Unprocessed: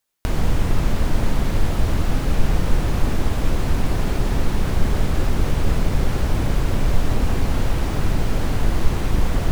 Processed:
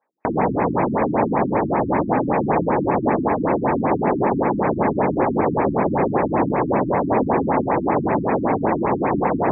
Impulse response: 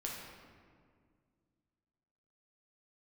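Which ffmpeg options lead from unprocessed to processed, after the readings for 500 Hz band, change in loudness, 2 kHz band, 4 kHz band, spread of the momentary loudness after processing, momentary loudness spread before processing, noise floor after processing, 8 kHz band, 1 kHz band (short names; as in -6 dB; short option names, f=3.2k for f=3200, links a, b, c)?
+10.5 dB, +3.5 dB, +2.5 dB, under -40 dB, 1 LU, 1 LU, -27 dBFS, under -40 dB, +12.5 dB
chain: -filter_complex "[0:a]asplit=2[a][b];[b]highpass=f=720:p=1,volume=18dB,asoftclip=type=tanh:threshold=-2.5dB[c];[a][c]amix=inputs=2:normalize=0,lowpass=f=1.1k:p=1,volume=-6dB,highpass=200,equalizer=f=880:t=q:w=4:g=5,equalizer=f=1.4k:t=q:w=4:g=-8,equalizer=f=2.9k:t=q:w=4:g=-5,lowpass=f=6.4k:w=0.5412,lowpass=f=6.4k:w=1.3066,afftfilt=real='re*lt(b*sr/1024,320*pow(2700/320,0.5+0.5*sin(2*PI*5.2*pts/sr)))':imag='im*lt(b*sr/1024,320*pow(2700/320,0.5+0.5*sin(2*PI*5.2*pts/sr)))':win_size=1024:overlap=0.75,volume=5.5dB"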